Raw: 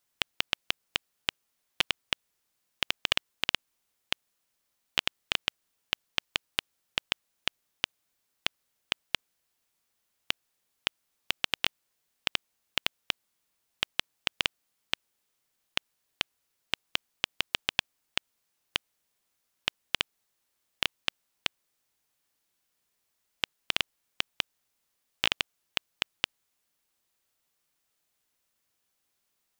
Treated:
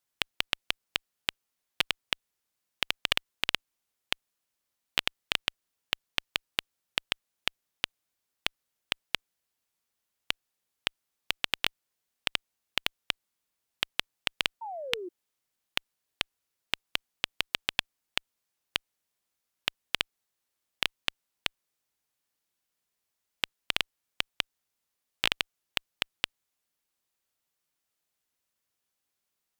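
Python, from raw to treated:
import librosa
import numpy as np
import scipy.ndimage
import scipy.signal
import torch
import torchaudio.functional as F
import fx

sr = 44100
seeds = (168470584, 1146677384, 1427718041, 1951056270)

y = fx.spec_paint(x, sr, seeds[0], shape='fall', start_s=14.61, length_s=0.48, low_hz=340.0, high_hz=940.0, level_db=-33.0)
y = fx.cheby_harmonics(y, sr, harmonics=(7,), levels_db=(-24,), full_scale_db=-4.0)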